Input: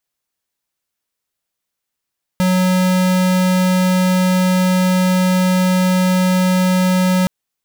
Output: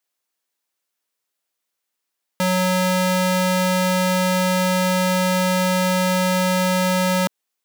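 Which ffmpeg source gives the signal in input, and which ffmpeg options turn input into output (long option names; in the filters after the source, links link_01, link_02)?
-f lavfi -i "aevalsrc='0.2*(2*lt(mod(184*t,1),0.5)-1)':duration=4.87:sample_rate=44100"
-af "highpass=270"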